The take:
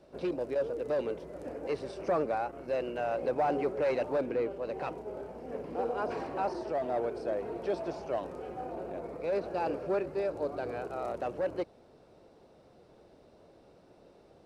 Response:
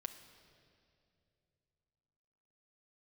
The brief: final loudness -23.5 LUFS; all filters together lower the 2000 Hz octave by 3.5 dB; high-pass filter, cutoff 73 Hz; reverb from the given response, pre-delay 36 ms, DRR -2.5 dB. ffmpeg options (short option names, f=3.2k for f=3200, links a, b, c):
-filter_complex "[0:a]highpass=73,equalizer=f=2k:t=o:g=-5,asplit=2[a][b];[1:a]atrim=start_sample=2205,adelay=36[c];[b][c]afir=irnorm=-1:irlink=0,volume=5dB[d];[a][d]amix=inputs=2:normalize=0,volume=6.5dB"